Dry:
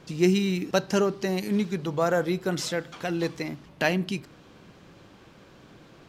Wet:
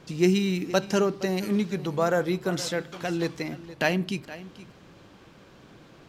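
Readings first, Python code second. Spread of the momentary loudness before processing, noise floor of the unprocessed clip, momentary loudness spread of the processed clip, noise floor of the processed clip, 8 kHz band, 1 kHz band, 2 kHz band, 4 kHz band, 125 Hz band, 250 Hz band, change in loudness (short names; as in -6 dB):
8 LU, -53 dBFS, 12 LU, -53 dBFS, 0.0 dB, 0.0 dB, 0.0 dB, 0.0 dB, 0.0 dB, 0.0 dB, 0.0 dB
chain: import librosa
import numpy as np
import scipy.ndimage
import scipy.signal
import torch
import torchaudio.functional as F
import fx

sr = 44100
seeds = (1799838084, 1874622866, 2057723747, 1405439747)

y = x + 10.0 ** (-16.5 / 20.0) * np.pad(x, (int(469 * sr / 1000.0), 0))[:len(x)]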